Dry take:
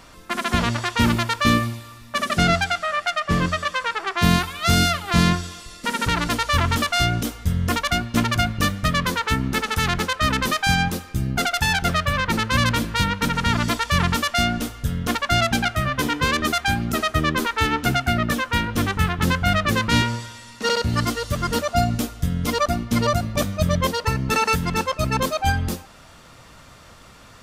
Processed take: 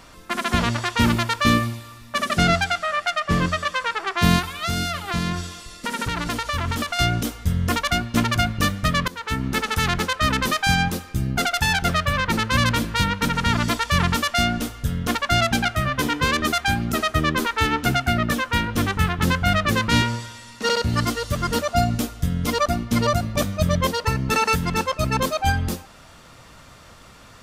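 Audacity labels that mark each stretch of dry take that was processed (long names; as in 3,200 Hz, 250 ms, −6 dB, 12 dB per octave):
4.390000	6.990000	downward compressor 4 to 1, threshold −20 dBFS
9.080000	9.670000	fade in equal-power, from −20.5 dB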